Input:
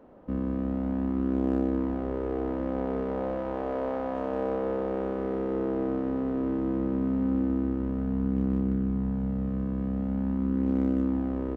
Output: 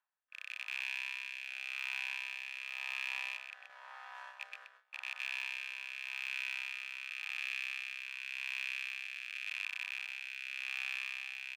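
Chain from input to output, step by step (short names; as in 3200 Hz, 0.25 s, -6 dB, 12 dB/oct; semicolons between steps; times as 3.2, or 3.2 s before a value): rattling part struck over -31 dBFS, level -23 dBFS; Bessel high-pass 1900 Hz, order 6; gate with hold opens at -39 dBFS; comb 1.2 ms, depth 31%; reverse; upward compressor, threshold -44 dBFS; reverse; rotary speaker horn 0.9 Hz; echo 0.127 s -7 dB; gain +1 dB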